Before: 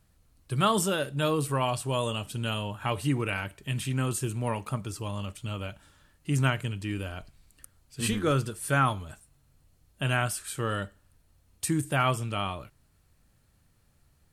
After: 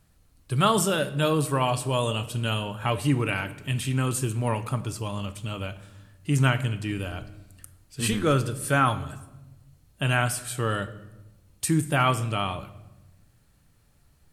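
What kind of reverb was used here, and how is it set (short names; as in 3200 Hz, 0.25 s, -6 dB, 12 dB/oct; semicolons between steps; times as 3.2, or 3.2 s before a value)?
shoebox room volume 460 m³, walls mixed, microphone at 0.35 m; gain +3 dB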